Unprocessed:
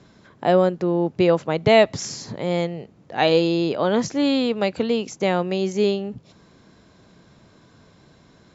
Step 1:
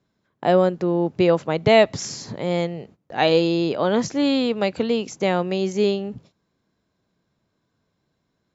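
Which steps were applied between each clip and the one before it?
gate -45 dBFS, range -20 dB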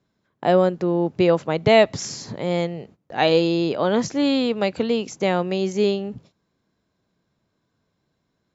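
no audible change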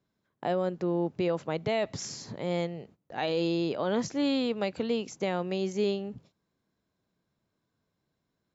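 peak limiter -11.5 dBFS, peak gain reduction 8.5 dB; trim -7.5 dB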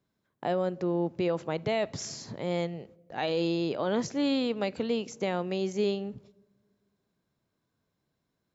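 reverberation RT60 1.3 s, pre-delay 8 ms, DRR 22.5 dB

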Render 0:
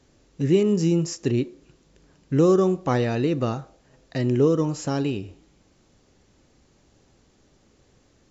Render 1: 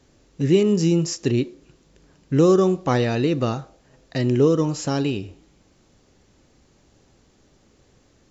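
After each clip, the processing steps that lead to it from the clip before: dynamic bell 4.1 kHz, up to +4 dB, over -47 dBFS, Q 0.9; trim +2 dB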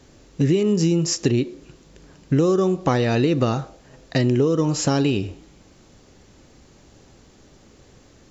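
compression 10:1, threshold -22 dBFS, peak gain reduction 11 dB; trim +7 dB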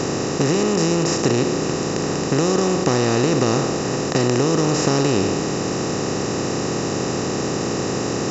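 spectral levelling over time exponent 0.2; trim -5.5 dB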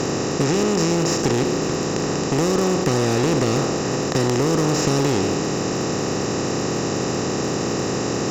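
one-sided clip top -16 dBFS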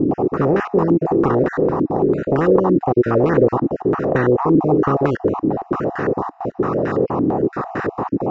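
random holes in the spectrogram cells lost 29%; step-sequenced low-pass 8.9 Hz 300–1600 Hz; trim +1 dB

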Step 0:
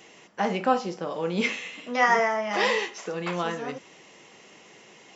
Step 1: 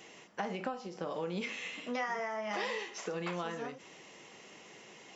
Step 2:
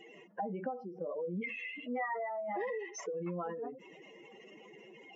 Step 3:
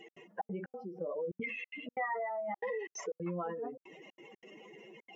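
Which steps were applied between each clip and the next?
compression 6:1, threshold -31 dBFS, peak gain reduction 15 dB; endings held to a fixed fall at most 120 dB/s; trim -2.5 dB
spectral contrast enhancement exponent 2.8
trance gate "x.xxx.xx.xxxxxx" 183 bpm -60 dB; trim +1 dB

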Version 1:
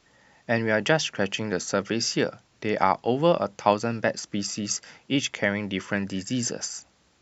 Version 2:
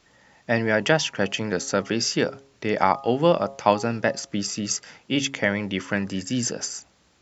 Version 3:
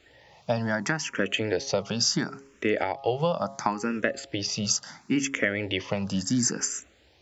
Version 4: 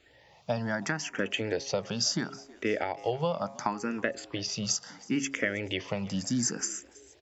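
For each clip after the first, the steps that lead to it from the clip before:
de-hum 136.9 Hz, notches 9; trim +2 dB
compression 6:1, threshold -23 dBFS, peak gain reduction 11.5 dB; barber-pole phaser +0.72 Hz; trim +4.5 dB
frequency-shifting echo 322 ms, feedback 49%, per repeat +81 Hz, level -22.5 dB; trim -4 dB

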